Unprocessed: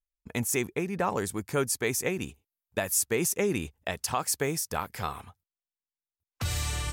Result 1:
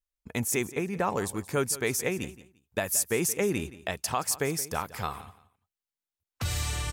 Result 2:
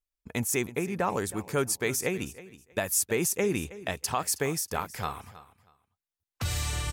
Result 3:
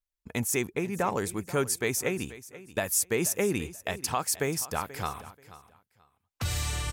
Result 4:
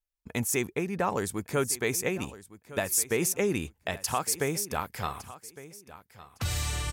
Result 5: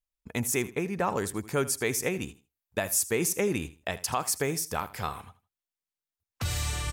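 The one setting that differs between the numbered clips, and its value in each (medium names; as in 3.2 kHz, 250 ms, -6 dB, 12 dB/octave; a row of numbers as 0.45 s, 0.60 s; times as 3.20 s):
feedback delay, time: 173 ms, 319 ms, 483 ms, 1159 ms, 80 ms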